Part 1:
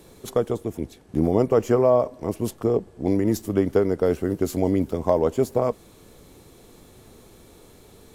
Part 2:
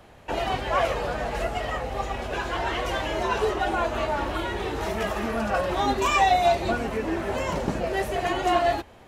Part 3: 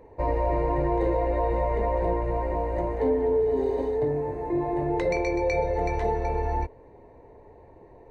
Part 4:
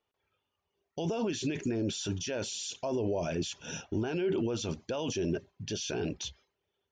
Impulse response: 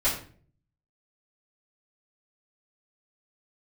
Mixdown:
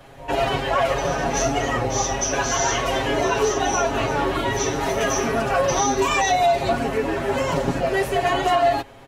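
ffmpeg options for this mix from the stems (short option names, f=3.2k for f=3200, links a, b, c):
-filter_complex "[0:a]adelay=50,volume=-15dB[a];[1:a]volume=2.5dB[b];[2:a]volume=-14.5dB[c];[3:a]lowpass=f=6.1k:t=q:w=11,volume=-13.5dB,asplit=2[d][e];[e]volume=-2dB[f];[4:a]atrim=start_sample=2205[g];[f][g]afir=irnorm=-1:irlink=0[h];[a][b][c][d][h]amix=inputs=5:normalize=0,aecho=1:1:7.3:0.97,alimiter=limit=-10.5dB:level=0:latency=1:release=84"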